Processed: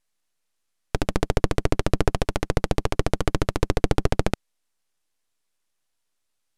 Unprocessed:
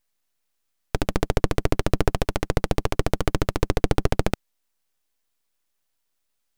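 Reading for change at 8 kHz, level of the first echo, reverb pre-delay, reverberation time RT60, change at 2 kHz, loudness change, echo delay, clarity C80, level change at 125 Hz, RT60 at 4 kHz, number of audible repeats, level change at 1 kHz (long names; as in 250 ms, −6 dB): 0.0 dB, no echo audible, no reverb audible, no reverb audible, 0.0 dB, 0.0 dB, no echo audible, no reverb audible, 0.0 dB, no reverb audible, no echo audible, 0.0 dB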